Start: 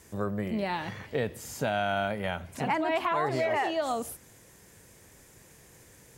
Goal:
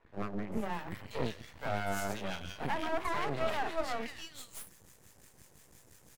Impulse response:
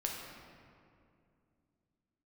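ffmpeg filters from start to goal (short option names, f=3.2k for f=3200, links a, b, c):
-filter_complex "[0:a]acrossover=split=1000[a][b];[a]aeval=exprs='val(0)*(1-0.7/2+0.7/2*cos(2*PI*5.8*n/s))':c=same[c];[b]aeval=exprs='val(0)*(1-0.7/2-0.7/2*cos(2*PI*5.8*n/s))':c=same[d];[c][d]amix=inputs=2:normalize=0,acrossover=split=430|2100[e][f][g];[e]adelay=40[h];[g]adelay=520[i];[h][f][i]amix=inputs=3:normalize=0,aeval=exprs='max(val(0),0)':c=same,volume=3dB"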